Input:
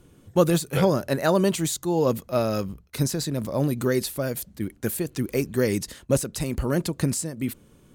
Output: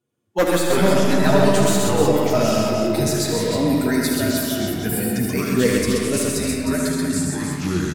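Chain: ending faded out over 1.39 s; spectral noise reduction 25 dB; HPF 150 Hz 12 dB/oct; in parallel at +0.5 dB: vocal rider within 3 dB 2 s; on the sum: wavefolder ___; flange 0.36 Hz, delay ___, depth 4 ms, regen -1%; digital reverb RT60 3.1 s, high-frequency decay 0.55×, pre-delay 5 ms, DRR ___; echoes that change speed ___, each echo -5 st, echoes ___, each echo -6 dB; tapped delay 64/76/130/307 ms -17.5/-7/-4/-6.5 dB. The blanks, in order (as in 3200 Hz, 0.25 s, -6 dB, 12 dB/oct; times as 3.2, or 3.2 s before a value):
-7.5 dBFS, 8.2 ms, 3 dB, 0.208 s, 2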